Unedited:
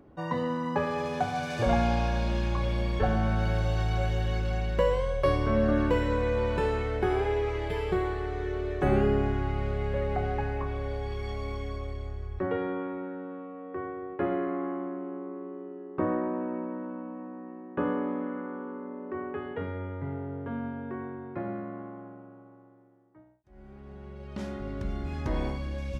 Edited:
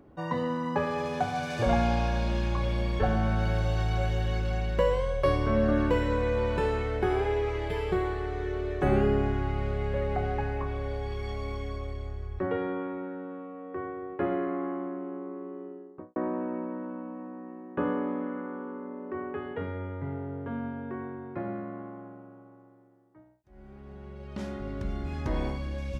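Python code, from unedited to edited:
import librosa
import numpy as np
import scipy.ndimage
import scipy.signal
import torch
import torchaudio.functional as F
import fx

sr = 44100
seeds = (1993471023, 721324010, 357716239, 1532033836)

y = fx.studio_fade_out(x, sr, start_s=15.61, length_s=0.55)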